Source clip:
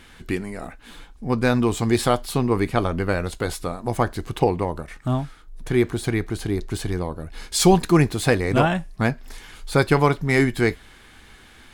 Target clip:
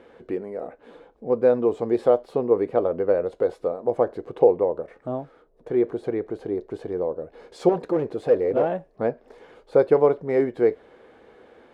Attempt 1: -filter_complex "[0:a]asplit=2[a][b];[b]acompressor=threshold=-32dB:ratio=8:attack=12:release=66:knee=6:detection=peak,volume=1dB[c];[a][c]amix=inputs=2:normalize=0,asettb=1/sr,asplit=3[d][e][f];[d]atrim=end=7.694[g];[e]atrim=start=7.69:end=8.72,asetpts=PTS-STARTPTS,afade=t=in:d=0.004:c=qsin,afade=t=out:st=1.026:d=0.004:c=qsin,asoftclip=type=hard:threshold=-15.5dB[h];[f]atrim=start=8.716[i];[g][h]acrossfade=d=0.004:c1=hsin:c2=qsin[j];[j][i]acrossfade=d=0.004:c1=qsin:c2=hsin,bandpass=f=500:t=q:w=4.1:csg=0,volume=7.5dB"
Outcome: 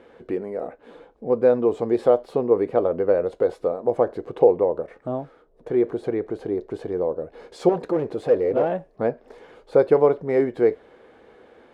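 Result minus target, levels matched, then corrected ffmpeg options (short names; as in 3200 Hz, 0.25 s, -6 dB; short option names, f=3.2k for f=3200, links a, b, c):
compressor: peak gain reduction -9.5 dB
-filter_complex "[0:a]asplit=2[a][b];[b]acompressor=threshold=-43dB:ratio=8:attack=12:release=66:knee=6:detection=peak,volume=1dB[c];[a][c]amix=inputs=2:normalize=0,asettb=1/sr,asplit=3[d][e][f];[d]atrim=end=7.694[g];[e]atrim=start=7.69:end=8.72,asetpts=PTS-STARTPTS,afade=t=in:d=0.004:c=qsin,afade=t=out:st=1.026:d=0.004:c=qsin,asoftclip=type=hard:threshold=-15.5dB[h];[f]atrim=start=8.716[i];[g][h]acrossfade=d=0.004:c1=hsin:c2=qsin[j];[j][i]acrossfade=d=0.004:c1=qsin:c2=hsin,bandpass=f=500:t=q:w=4.1:csg=0,volume=7.5dB"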